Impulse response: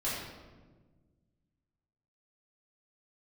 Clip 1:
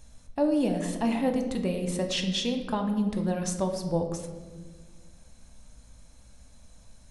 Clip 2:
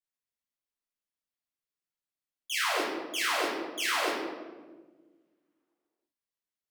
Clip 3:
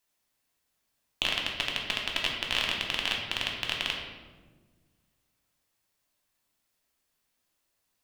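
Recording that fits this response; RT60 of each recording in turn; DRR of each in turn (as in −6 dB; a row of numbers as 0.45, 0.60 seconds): 2; 1.5, 1.4, 1.4 seconds; 4.5, −10.0, −1.0 decibels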